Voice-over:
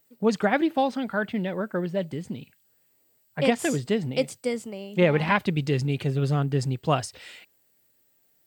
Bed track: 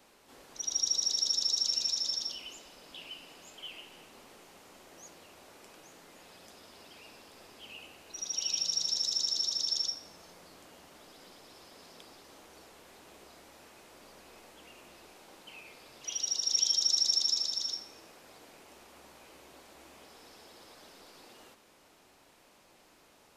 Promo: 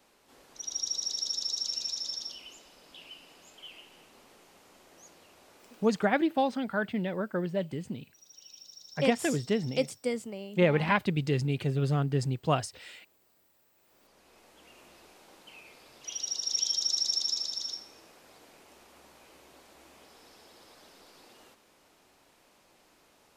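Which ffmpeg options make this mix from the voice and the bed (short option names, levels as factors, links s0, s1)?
-filter_complex "[0:a]adelay=5600,volume=0.668[s0];[1:a]volume=5.62,afade=t=out:st=5.9:d=0.24:silence=0.149624,afade=t=in:st=13.74:d=1.07:silence=0.125893[s1];[s0][s1]amix=inputs=2:normalize=0"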